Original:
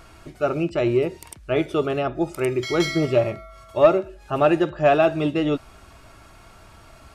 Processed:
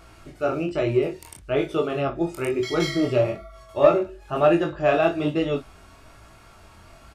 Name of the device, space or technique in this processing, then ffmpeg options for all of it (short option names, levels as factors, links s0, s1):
double-tracked vocal: -filter_complex "[0:a]asplit=2[s0][s1];[s1]adelay=35,volume=0.355[s2];[s0][s2]amix=inputs=2:normalize=0,flanger=delay=18:depth=6.2:speed=1.1,volume=1.12"